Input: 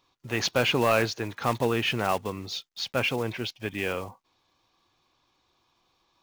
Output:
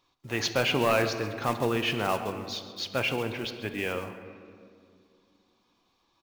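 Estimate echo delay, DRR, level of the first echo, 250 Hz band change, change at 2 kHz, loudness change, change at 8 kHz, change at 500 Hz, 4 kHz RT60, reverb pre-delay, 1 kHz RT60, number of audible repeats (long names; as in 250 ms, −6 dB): 134 ms, 8.0 dB, −16.5 dB, −1.0 dB, −1.5 dB, −1.5 dB, −1.5 dB, −1.0 dB, 1.3 s, 3 ms, 2.0 s, 1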